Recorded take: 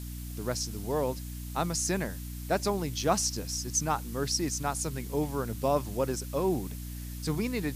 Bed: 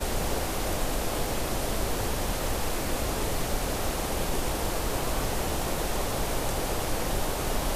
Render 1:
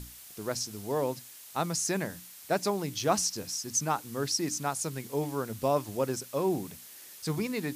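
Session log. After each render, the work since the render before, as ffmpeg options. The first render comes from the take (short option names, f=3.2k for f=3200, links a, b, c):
-af "bandreject=f=60:t=h:w=6,bandreject=f=120:t=h:w=6,bandreject=f=180:t=h:w=6,bandreject=f=240:t=h:w=6,bandreject=f=300:t=h:w=6"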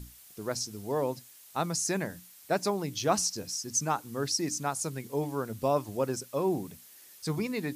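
-af "afftdn=nr=6:nf=-49"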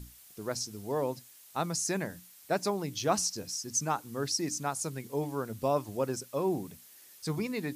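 -af "volume=-1.5dB"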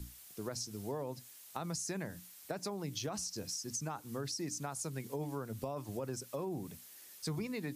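-filter_complex "[0:a]alimiter=limit=-23.5dB:level=0:latency=1:release=26,acrossover=split=130[a][b];[b]acompressor=threshold=-37dB:ratio=6[c];[a][c]amix=inputs=2:normalize=0"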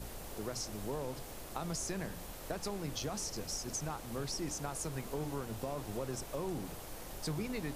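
-filter_complex "[1:a]volume=-18.5dB[a];[0:a][a]amix=inputs=2:normalize=0"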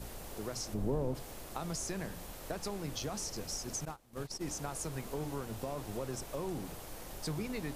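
-filter_complex "[0:a]asplit=3[a][b][c];[a]afade=t=out:st=0.73:d=0.02[d];[b]tiltshelf=f=850:g=9,afade=t=in:st=0.73:d=0.02,afade=t=out:st=1.14:d=0.02[e];[c]afade=t=in:st=1.14:d=0.02[f];[d][e][f]amix=inputs=3:normalize=0,asettb=1/sr,asplit=3[g][h][i];[g]atrim=end=3.854[j];[h]atrim=start=3.85:end=4.41,asetpts=PTS-STARTPTS,afade=t=in:d=0.004:c=qsin,afade=t=out:st=0.556:d=0.004:c=qsin,agate=range=-20dB:threshold=-39dB:ratio=16:release=100:detection=peak[k];[i]atrim=start=4.406[l];[j][k]acrossfade=d=0.004:c1=hsin:c2=qsin[m];[m][l]acrossfade=d=0.004:c1=qsin:c2=hsin"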